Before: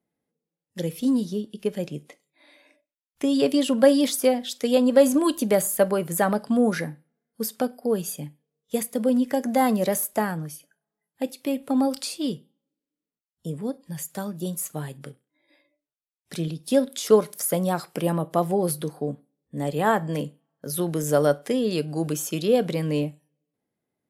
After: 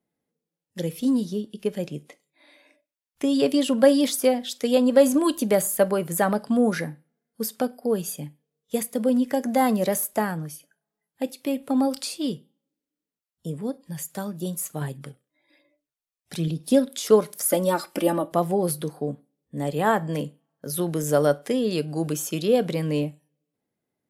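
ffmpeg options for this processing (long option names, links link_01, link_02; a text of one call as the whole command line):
ffmpeg -i in.wav -filter_complex "[0:a]asettb=1/sr,asplit=3[link_01][link_02][link_03];[link_01]atrim=end=14.814[link_04];[link_02]atrim=start=14.81:end=16.86,asetpts=PTS-STARTPTS,afade=type=in:duration=0.004:curve=qsin,afade=type=out:start_time=2.046:duration=0.004:curve=qsin,aphaser=in_gain=1:out_gain=1:delay=1.7:decay=0.42:speed=1.1:type=sinusoidal[link_05];[link_03]atrim=start=16.856[link_06];[link_04][link_05]acrossfade=duration=0.004:curve1=hsin:curve2=qsin[link_07];[link_07][link_06]acrossfade=duration=0.004:curve1=qsin:curve2=hsin,asettb=1/sr,asplit=3[link_08][link_09][link_10];[link_08]atrim=end=17.454[link_11];[link_09]atrim=start=17.45:end=18.32,asetpts=PTS-STARTPTS,afade=type=in:duration=0.004:curve=qsin,afade=type=out:start_time=0.866:duration=0.004:curve=qsin,aecho=1:1:3.4:1,atrim=end_sample=38367[link_12];[link_10]atrim=start=18.316[link_13];[link_11][link_12]acrossfade=duration=0.004:curve1=hsin:curve2=qsin[link_14];[link_14][link_13]acrossfade=duration=0.004:curve1=qsin:curve2=hsin" out.wav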